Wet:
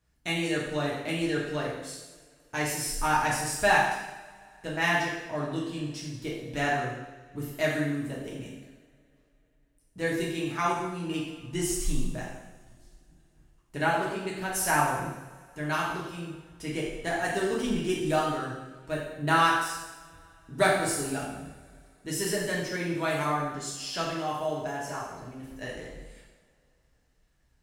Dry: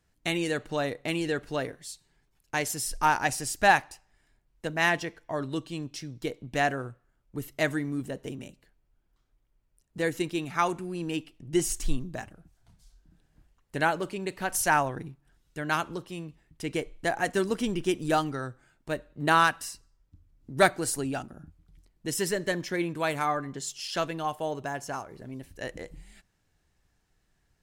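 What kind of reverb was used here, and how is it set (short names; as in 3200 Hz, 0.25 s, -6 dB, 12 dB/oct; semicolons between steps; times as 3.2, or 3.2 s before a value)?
two-slope reverb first 0.96 s, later 3.5 s, from -24 dB, DRR -5 dB; gain -6 dB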